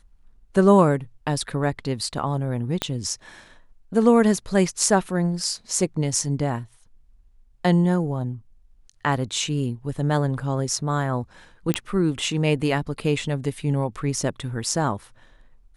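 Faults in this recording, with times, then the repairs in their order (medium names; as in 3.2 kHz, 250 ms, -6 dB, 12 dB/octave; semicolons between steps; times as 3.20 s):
2.82 s: pop -8 dBFS
11.74 s: pop -6 dBFS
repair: de-click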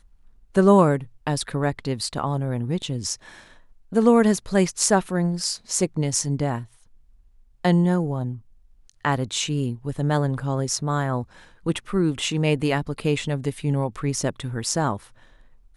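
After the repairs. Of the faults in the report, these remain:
2.82 s: pop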